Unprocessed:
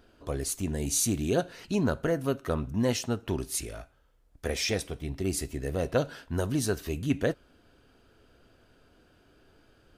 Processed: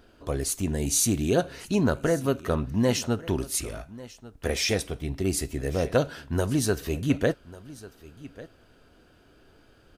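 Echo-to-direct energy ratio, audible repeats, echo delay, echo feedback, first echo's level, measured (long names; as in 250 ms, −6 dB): −19.0 dB, 1, 1,145 ms, repeats not evenly spaced, −19.0 dB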